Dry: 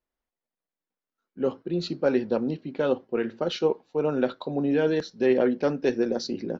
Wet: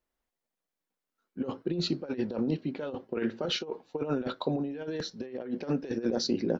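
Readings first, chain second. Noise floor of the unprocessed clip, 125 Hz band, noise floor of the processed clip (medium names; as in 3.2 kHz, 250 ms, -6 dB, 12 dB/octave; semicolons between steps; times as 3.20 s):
under -85 dBFS, -1.5 dB, under -85 dBFS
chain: compressor with a negative ratio -28 dBFS, ratio -0.5; trim -2 dB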